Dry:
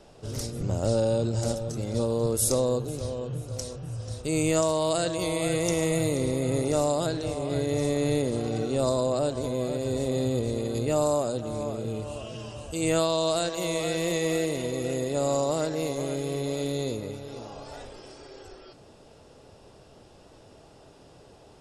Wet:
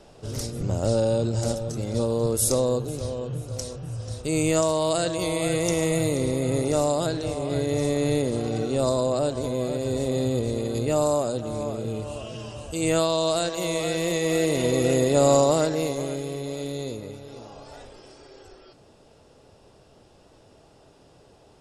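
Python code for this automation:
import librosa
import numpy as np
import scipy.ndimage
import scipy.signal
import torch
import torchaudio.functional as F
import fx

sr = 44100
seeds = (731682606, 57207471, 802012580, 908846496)

y = fx.gain(x, sr, db=fx.line((14.24, 2.0), (14.7, 8.0), (15.35, 8.0), (16.38, -2.0)))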